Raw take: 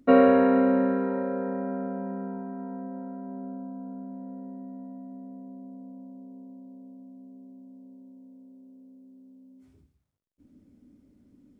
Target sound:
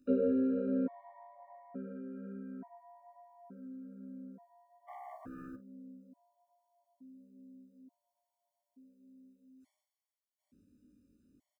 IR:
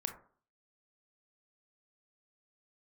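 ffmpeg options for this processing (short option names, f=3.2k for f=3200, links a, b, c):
-filter_complex "[0:a]highshelf=f=2.8k:g=10.5,acrossover=split=650[a][b];[b]acompressor=threshold=-46dB:ratio=12[c];[a][c]amix=inputs=2:normalize=0,flanger=delay=19.5:depth=3.1:speed=1.2,asplit=3[d][e][f];[d]afade=t=out:st=4.87:d=0.02[g];[e]aeval=exprs='0.0178*sin(PI/2*3.98*val(0)/0.0178)':c=same,afade=t=in:st=4.87:d=0.02,afade=t=out:st=5.55:d=0.02[h];[f]afade=t=in:st=5.55:d=0.02[i];[g][h][i]amix=inputs=3:normalize=0,asplit=2[j][k];[k]aecho=0:1:39|55:0.178|0.126[l];[j][l]amix=inputs=2:normalize=0,afftfilt=real='re*gt(sin(2*PI*0.57*pts/sr)*(1-2*mod(floor(b*sr/1024/590),2)),0)':imag='im*gt(sin(2*PI*0.57*pts/sr)*(1-2*mod(floor(b*sr/1024/590),2)),0)':win_size=1024:overlap=0.75,volume=-6.5dB"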